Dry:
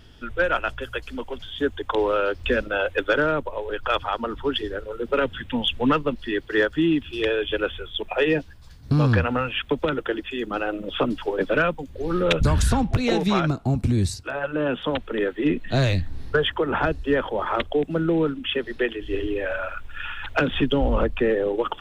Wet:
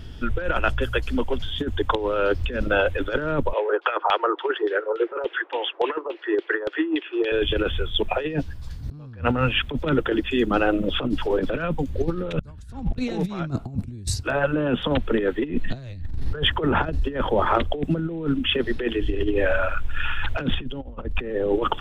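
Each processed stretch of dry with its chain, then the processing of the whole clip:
3.53–7.32 s: steep high-pass 330 Hz 96 dB/octave + LFO low-pass saw down 3.5 Hz 780–3500 Hz
whole clip: bass shelf 260 Hz +9 dB; compressor with a negative ratio -22 dBFS, ratio -0.5

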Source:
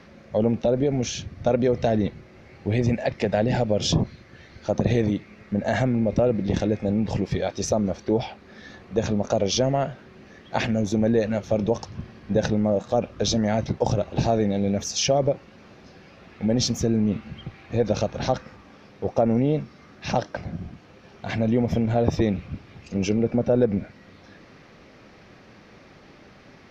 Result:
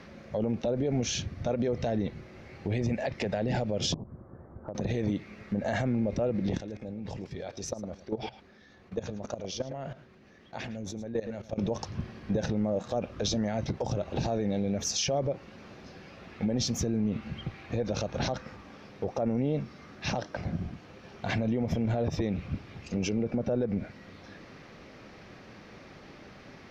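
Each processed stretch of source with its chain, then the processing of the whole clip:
3.94–4.75 s: steep low-pass 1.2 kHz + compression, threshold -35 dBFS
6.57–11.58 s: level held to a coarse grid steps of 19 dB + delay 108 ms -16 dB
whole clip: compression 3:1, threshold -23 dBFS; peak limiter -20 dBFS

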